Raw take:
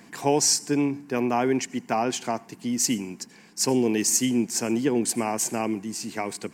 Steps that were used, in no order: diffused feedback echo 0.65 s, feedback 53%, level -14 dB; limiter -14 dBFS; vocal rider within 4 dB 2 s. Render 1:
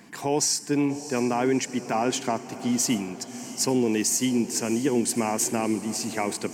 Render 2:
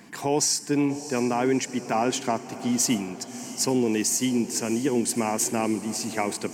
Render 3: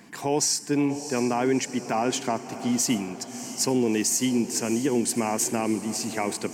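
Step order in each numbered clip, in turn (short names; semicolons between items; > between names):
vocal rider > limiter > diffused feedback echo; limiter > vocal rider > diffused feedback echo; vocal rider > diffused feedback echo > limiter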